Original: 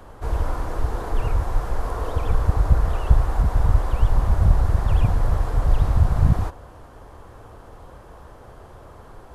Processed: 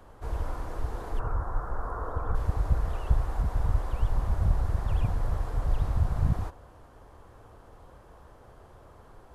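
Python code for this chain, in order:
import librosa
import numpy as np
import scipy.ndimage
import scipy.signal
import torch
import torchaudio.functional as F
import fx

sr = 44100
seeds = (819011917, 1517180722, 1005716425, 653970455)

y = fx.high_shelf_res(x, sr, hz=1900.0, db=-11.0, q=3.0, at=(1.19, 2.35))
y = y * librosa.db_to_amplitude(-8.5)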